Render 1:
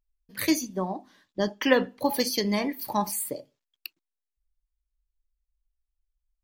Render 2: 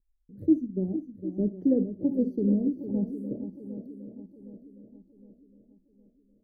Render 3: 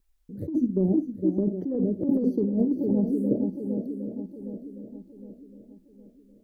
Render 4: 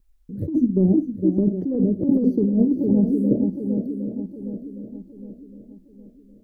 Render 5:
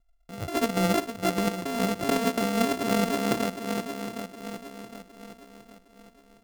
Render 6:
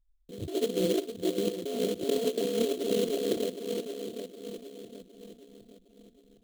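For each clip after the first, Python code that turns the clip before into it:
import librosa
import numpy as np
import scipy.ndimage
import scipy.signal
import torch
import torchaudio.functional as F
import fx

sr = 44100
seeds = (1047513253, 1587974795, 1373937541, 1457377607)

y1 = scipy.signal.sosfilt(scipy.signal.cheby2(4, 50, 1000.0, 'lowpass', fs=sr, output='sos'), x)
y1 = fx.echo_swing(y1, sr, ms=762, ratio=1.5, feedback_pct=42, wet_db=-10.0)
y1 = y1 * librosa.db_to_amplitude(3.5)
y2 = fx.low_shelf(y1, sr, hz=200.0, db=-7.5)
y2 = fx.over_compress(y2, sr, threshold_db=-32.0, ratio=-1.0)
y2 = y2 * librosa.db_to_amplitude(9.0)
y3 = fx.low_shelf(y2, sr, hz=290.0, db=9.5)
y4 = np.r_[np.sort(y3[:len(y3) // 64 * 64].reshape(-1, 64), axis=1).ravel(), y3[len(y3) // 64 * 64:]]
y4 = y4 * librosa.db_to_amplitude(-7.0)
y5 = fx.envelope_sharpen(y4, sr, power=3.0)
y5 = fx.sample_hold(y5, sr, seeds[0], rate_hz=3700.0, jitter_pct=20)
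y5 = y5 * librosa.db_to_amplitude(-3.0)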